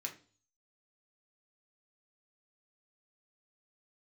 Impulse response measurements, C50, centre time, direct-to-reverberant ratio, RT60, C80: 12.5 dB, 12 ms, 1.0 dB, 0.40 s, 18.0 dB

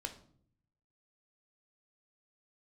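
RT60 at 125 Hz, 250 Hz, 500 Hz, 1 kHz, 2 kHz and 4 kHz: 1.1, 0.90, 0.65, 0.50, 0.40, 0.40 s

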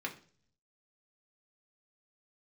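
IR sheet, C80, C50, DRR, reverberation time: 18.0 dB, 13.0 dB, -0.5 dB, 0.45 s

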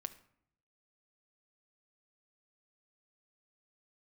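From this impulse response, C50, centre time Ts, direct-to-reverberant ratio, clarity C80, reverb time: 15.0 dB, 5 ms, 9.0 dB, 18.0 dB, 0.65 s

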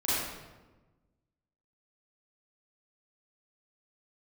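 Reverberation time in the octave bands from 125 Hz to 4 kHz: 1.7, 1.6, 1.3, 1.1, 0.95, 0.80 s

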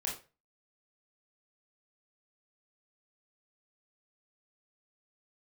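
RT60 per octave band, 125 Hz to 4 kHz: 0.40, 0.30, 0.35, 0.30, 0.30, 0.25 s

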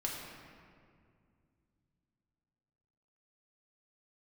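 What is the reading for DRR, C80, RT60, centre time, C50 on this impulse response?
-3.0 dB, 2.5 dB, 2.2 s, 94 ms, 1.0 dB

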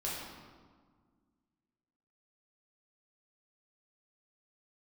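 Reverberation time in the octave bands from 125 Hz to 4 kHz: 2.1, 2.4, 1.7, 1.6, 1.2, 1.0 s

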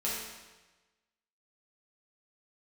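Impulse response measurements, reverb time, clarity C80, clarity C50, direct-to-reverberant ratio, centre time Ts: 1.2 s, 2.5 dB, -0.5 dB, -8.0 dB, 78 ms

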